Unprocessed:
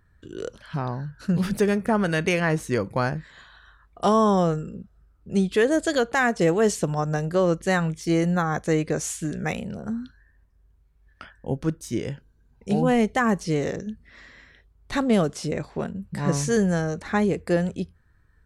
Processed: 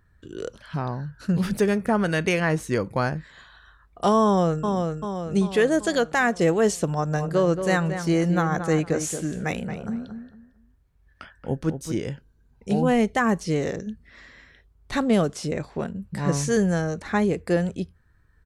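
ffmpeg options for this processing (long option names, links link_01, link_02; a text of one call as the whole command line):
ffmpeg -i in.wav -filter_complex "[0:a]asplit=2[link_01][link_02];[link_02]afade=type=in:start_time=4.24:duration=0.01,afade=type=out:start_time=4.66:duration=0.01,aecho=0:1:390|780|1170|1560|1950|2340|2730:0.595662|0.327614|0.180188|0.0991033|0.0545068|0.0299787|0.0164883[link_03];[link_01][link_03]amix=inputs=2:normalize=0,asplit=3[link_04][link_05][link_06];[link_04]afade=type=out:start_time=7.14:duration=0.02[link_07];[link_05]asplit=2[link_08][link_09];[link_09]adelay=226,lowpass=frequency=2000:poles=1,volume=-8dB,asplit=2[link_10][link_11];[link_11]adelay=226,lowpass=frequency=2000:poles=1,volume=0.25,asplit=2[link_12][link_13];[link_13]adelay=226,lowpass=frequency=2000:poles=1,volume=0.25[link_14];[link_08][link_10][link_12][link_14]amix=inputs=4:normalize=0,afade=type=in:start_time=7.14:duration=0.02,afade=type=out:start_time=11.96:duration=0.02[link_15];[link_06]afade=type=in:start_time=11.96:duration=0.02[link_16];[link_07][link_15][link_16]amix=inputs=3:normalize=0" out.wav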